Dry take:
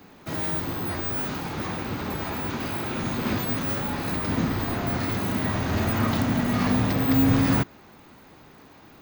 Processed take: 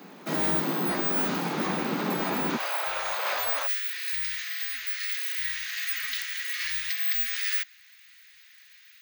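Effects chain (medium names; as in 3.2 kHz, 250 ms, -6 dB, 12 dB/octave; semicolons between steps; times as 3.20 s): Chebyshev high-pass 170 Hz, order 4, from 2.56 s 560 Hz, from 3.66 s 1.8 kHz; trim +3.5 dB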